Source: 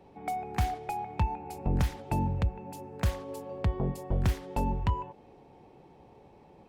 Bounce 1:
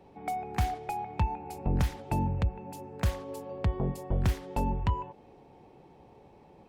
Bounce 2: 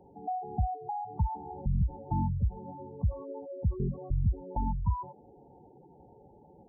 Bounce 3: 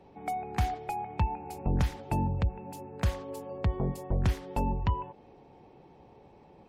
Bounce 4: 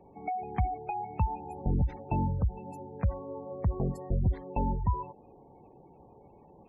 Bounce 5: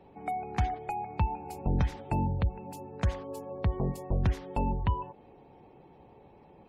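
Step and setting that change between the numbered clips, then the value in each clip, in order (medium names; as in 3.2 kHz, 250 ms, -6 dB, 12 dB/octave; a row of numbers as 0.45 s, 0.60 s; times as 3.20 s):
spectral gate, under each frame's peak: -60 dB, -10 dB, -45 dB, -20 dB, -35 dB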